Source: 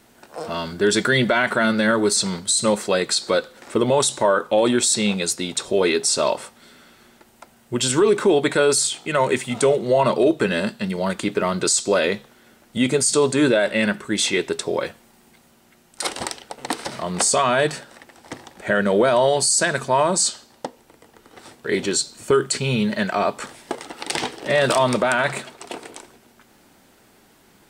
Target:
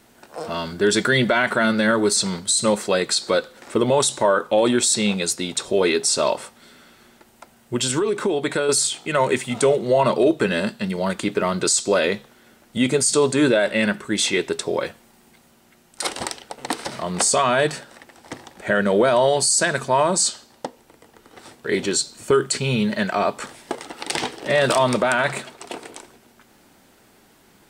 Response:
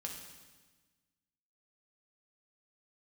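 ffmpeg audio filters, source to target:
-filter_complex "[0:a]asettb=1/sr,asplit=3[s0][s1][s2];[s0]atrim=end=7.764[s3];[s1]atrim=start=7.76:end=8.69,asetpts=PTS-STARTPTS,afade=t=in:d=0.004:c=qsin,afade=t=out:st=0.926:d=0.004:c=qsin,acompressor=threshold=0.126:ratio=6[s4];[s2]atrim=start=8.686[s5];[s3][s4]acrossfade=d=0.004:c1=hsin:c2=qsin[s6];[s6][s5]acrossfade=d=0.004:c1=qsin:c2=hsin"

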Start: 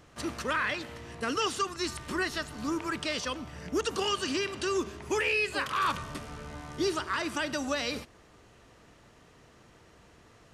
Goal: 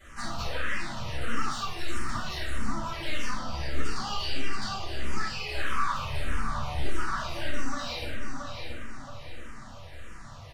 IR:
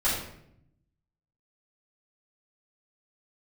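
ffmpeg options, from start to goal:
-filter_complex "[0:a]alimiter=level_in=1.58:limit=0.0631:level=0:latency=1,volume=0.631,aeval=exprs='(tanh(70.8*val(0)+0.75)-tanh(0.75))/70.8':c=same,asplit=2[s0][s1];[s1]adelay=677,lowpass=f=4300:p=1,volume=0.335,asplit=2[s2][s3];[s3]adelay=677,lowpass=f=4300:p=1,volume=0.44,asplit=2[s4][s5];[s5]adelay=677,lowpass=f=4300:p=1,volume=0.44,asplit=2[s6][s7];[s7]adelay=677,lowpass=f=4300:p=1,volume=0.44,asplit=2[s8][s9];[s9]adelay=677,lowpass=f=4300:p=1,volume=0.44[s10];[s0][s2][s4][s6][s8][s10]amix=inputs=6:normalize=0,acompressor=threshold=0.00708:ratio=3,asettb=1/sr,asplit=3[s11][s12][s13];[s11]atrim=end=3.374[s14];[s12]atrim=start=3.37:end=5.52,asetpts=PTS-STARTPTS,afade=t=in:d=0.004:c=qsin,afade=t=out:st=2.146:d=0.004:c=qsin,equalizer=f=4700:t=o:w=0.32:g=8[s15];[s13]atrim=start=5.516[s16];[s14][s15]acrossfade=d=0.004:c1=hsin:c2=qsin[s17];[s17][s16]acrossfade=d=0.004:c1=qsin:c2=hsin[s18];[1:a]atrim=start_sample=2205,asetrate=43659,aresample=44100[s19];[s18][s19]afir=irnorm=-1:irlink=0,acrossover=split=5800[s20][s21];[s21]acompressor=threshold=0.002:ratio=4:attack=1:release=60[s22];[s20][s22]amix=inputs=2:normalize=0,equalizer=f=350:t=o:w=1.3:g=-10,asplit=2[s23][s24];[s24]afreqshift=-1.6[s25];[s23][s25]amix=inputs=2:normalize=1,volume=2.11"

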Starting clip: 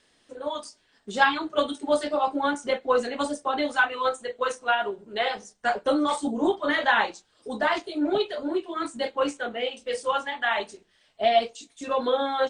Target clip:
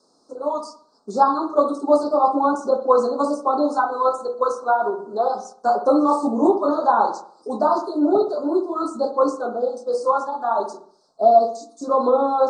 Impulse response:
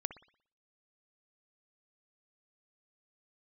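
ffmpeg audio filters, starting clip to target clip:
-filter_complex "[1:a]atrim=start_sample=2205,asetrate=41895,aresample=44100[s0];[0:a][s0]afir=irnorm=-1:irlink=0,acrossover=split=2700[s1][s2];[s2]acompressor=threshold=0.00794:ratio=4:attack=1:release=60[s3];[s1][s3]amix=inputs=2:normalize=0,asuperstop=centerf=2400:order=12:qfactor=0.78,acrossover=split=170 7400:gain=0.0708 1 0.141[s4][s5][s6];[s4][s5][s6]amix=inputs=3:normalize=0,volume=2.51"

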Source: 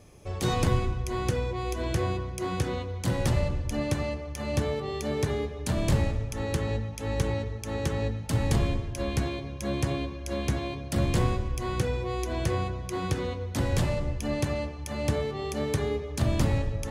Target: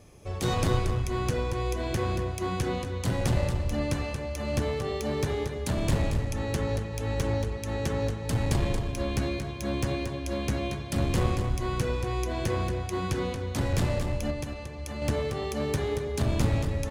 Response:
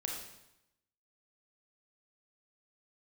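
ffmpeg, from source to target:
-filter_complex "[0:a]asettb=1/sr,asplit=3[s0][s1][s2];[s0]atrim=end=14.304[s3];[s1]atrim=start=14.3:end=15.02,asetpts=PTS-STARTPTS,afade=t=in:d=0.004:c=qsin,afade=t=out:st=0.716:d=0.004:c=qsin,acompressor=threshold=0.0224:ratio=4[s4];[s2]atrim=start=15.016[s5];[s3][s4]acrossfade=d=0.004:c1=hsin:c2=qsin[s6];[s6][s5]acrossfade=d=0.004:c1=qsin:c2=hsin,aeval=exprs='clip(val(0),-1,0.0596)':c=same,aecho=1:1:230:0.447"

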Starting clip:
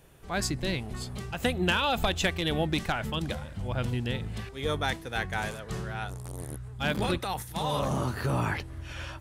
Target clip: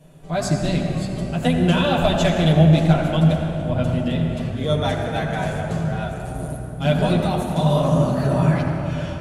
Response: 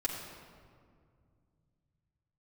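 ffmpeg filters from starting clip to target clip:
-filter_complex "[0:a]equalizer=f=160:t=o:w=0.33:g=12,equalizer=f=250:t=o:w=0.33:g=8,equalizer=f=630:t=o:w=0.33:g=12[s0];[1:a]atrim=start_sample=2205,asetrate=23814,aresample=44100[s1];[s0][s1]afir=irnorm=-1:irlink=0,volume=0.596"

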